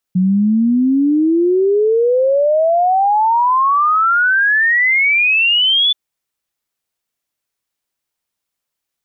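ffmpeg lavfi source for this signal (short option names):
-f lavfi -i "aevalsrc='0.316*clip(min(t,5.78-t)/0.01,0,1)*sin(2*PI*180*5.78/log(3500/180)*(exp(log(3500/180)*t/5.78)-1))':d=5.78:s=44100"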